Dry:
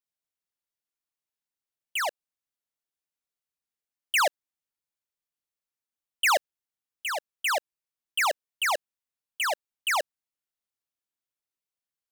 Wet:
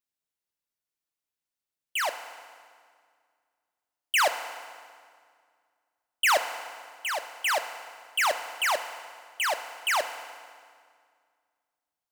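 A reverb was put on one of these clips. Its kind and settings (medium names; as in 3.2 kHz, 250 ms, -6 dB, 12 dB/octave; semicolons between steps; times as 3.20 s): FDN reverb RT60 2 s, low-frequency decay 1.25×, high-frequency decay 0.85×, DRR 8 dB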